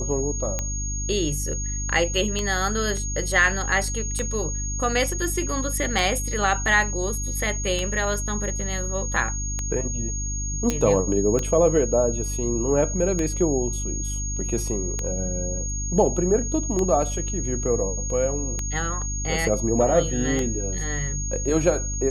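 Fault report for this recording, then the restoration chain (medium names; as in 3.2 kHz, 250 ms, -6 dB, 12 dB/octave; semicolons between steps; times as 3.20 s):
hum 50 Hz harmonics 6 -29 dBFS
tick 33 1/3 rpm -12 dBFS
whine 6.6 kHz -30 dBFS
10.70 s: pop -9 dBFS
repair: de-click; band-stop 6.6 kHz, Q 30; de-hum 50 Hz, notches 6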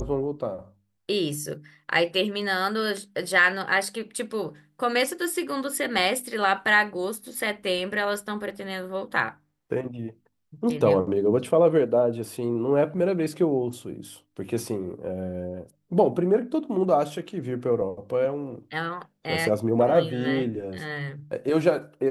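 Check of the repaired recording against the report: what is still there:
nothing left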